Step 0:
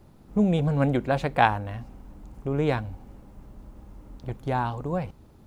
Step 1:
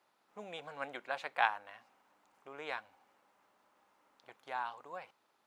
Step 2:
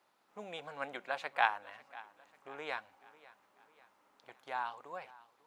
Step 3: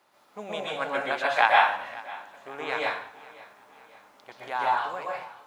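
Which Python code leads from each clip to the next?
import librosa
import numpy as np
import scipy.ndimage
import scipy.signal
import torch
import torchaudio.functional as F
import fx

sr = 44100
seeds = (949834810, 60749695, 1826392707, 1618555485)

y1 = scipy.signal.sosfilt(scipy.signal.butter(2, 1100.0, 'highpass', fs=sr, output='sos'), x)
y1 = fx.high_shelf(y1, sr, hz=5500.0, db=-10.0)
y1 = y1 * 10.0 ** (-5.0 / 20.0)
y2 = fx.echo_feedback(y1, sr, ms=545, feedback_pct=48, wet_db=-20)
y2 = y2 * 10.0 ** (1.0 / 20.0)
y3 = fx.rev_plate(y2, sr, seeds[0], rt60_s=0.52, hf_ratio=0.95, predelay_ms=110, drr_db=-4.0)
y3 = y3 * 10.0 ** (7.5 / 20.0)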